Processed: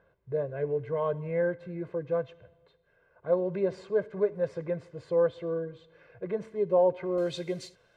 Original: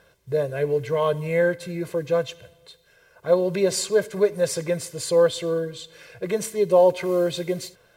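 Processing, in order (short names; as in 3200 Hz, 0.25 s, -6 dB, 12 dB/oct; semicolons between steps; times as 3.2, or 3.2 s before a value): LPF 1500 Hz 12 dB/oct, from 7.18 s 6400 Hz; gain -7 dB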